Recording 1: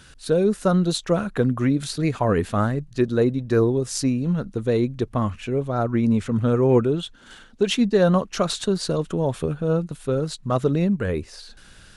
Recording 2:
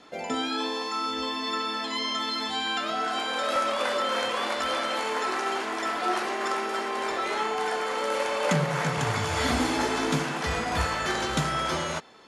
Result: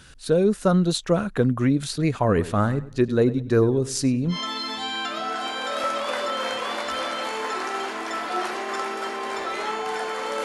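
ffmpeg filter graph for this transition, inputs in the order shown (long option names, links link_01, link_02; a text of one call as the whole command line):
ffmpeg -i cue0.wav -i cue1.wav -filter_complex "[0:a]asplit=3[link_01][link_02][link_03];[link_01]afade=type=out:start_time=2.34:duration=0.02[link_04];[link_02]asplit=2[link_05][link_06];[link_06]adelay=98,lowpass=frequency=3900:poles=1,volume=-16dB,asplit=2[link_07][link_08];[link_08]adelay=98,lowpass=frequency=3900:poles=1,volume=0.31,asplit=2[link_09][link_10];[link_10]adelay=98,lowpass=frequency=3900:poles=1,volume=0.31[link_11];[link_05][link_07][link_09][link_11]amix=inputs=4:normalize=0,afade=type=in:start_time=2.34:duration=0.02,afade=type=out:start_time=4.38:duration=0.02[link_12];[link_03]afade=type=in:start_time=4.38:duration=0.02[link_13];[link_04][link_12][link_13]amix=inputs=3:normalize=0,apad=whole_dur=10.44,atrim=end=10.44,atrim=end=4.38,asetpts=PTS-STARTPTS[link_14];[1:a]atrim=start=2:end=8.16,asetpts=PTS-STARTPTS[link_15];[link_14][link_15]acrossfade=duration=0.1:curve1=tri:curve2=tri" out.wav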